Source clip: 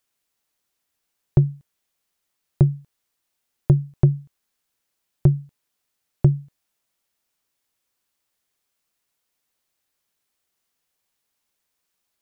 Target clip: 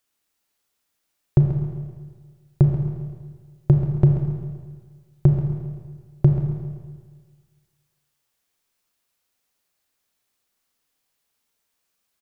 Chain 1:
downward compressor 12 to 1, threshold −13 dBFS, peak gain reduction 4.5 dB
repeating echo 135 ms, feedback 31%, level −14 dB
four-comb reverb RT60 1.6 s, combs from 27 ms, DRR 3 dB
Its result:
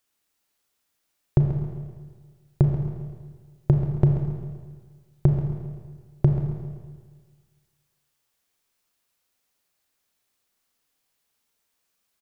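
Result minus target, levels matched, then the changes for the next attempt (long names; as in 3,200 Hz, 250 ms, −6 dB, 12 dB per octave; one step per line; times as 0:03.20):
downward compressor: peak gain reduction +4.5 dB
remove: downward compressor 12 to 1, threshold −13 dBFS, peak gain reduction 4.5 dB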